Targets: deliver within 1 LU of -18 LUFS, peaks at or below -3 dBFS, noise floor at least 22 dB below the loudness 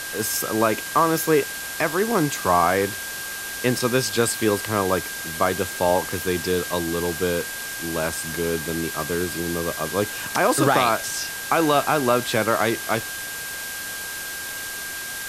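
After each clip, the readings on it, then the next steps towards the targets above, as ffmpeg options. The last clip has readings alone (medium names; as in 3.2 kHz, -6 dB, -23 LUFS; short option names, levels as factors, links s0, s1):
steady tone 1.6 kHz; tone level -33 dBFS; noise floor -32 dBFS; noise floor target -45 dBFS; loudness -23.0 LUFS; peak level -5.5 dBFS; loudness target -18.0 LUFS
-> -af "bandreject=f=1600:w=30"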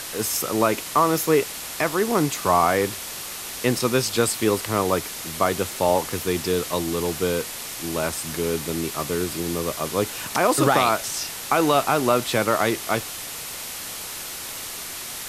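steady tone not found; noise floor -34 dBFS; noise floor target -46 dBFS
-> -af "afftdn=nr=12:nf=-34"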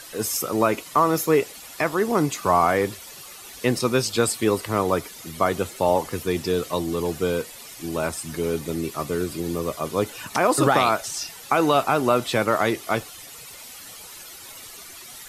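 noise floor -42 dBFS; noise floor target -45 dBFS
-> -af "afftdn=nr=6:nf=-42"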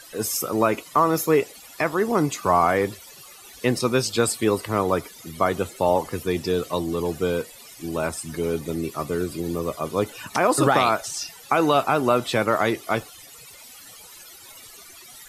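noise floor -45 dBFS; noise floor target -46 dBFS
-> -af "afftdn=nr=6:nf=-45"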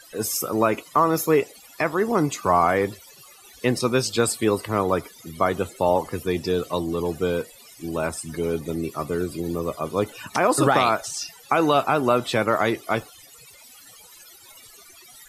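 noise floor -49 dBFS; loudness -23.5 LUFS; peak level -6.5 dBFS; loudness target -18.0 LUFS
-> -af "volume=1.88,alimiter=limit=0.708:level=0:latency=1"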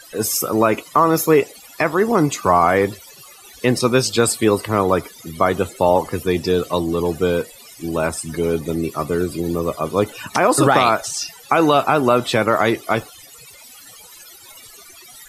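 loudness -18.5 LUFS; peak level -3.0 dBFS; noise floor -43 dBFS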